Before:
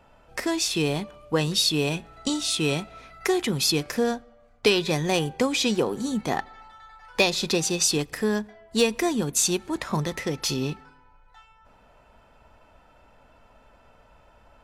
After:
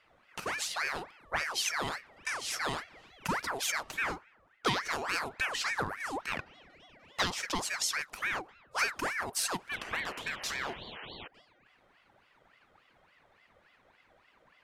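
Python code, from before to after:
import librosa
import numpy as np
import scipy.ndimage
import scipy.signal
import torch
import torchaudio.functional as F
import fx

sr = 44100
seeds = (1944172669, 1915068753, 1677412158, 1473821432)

y = fx.spec_paint(x, sr, seeds[0], shape='noise', start_s=9.71, length_s=1.57, low_hz=880.0, high_hz=2500.0, level_db=-36.0)
y = fx.ring_lfo(y, sr, carrier_hz=1300.0, swing_pct=60, hz=3.5)
y = y * librosa.db_to_amplitude(-7.0)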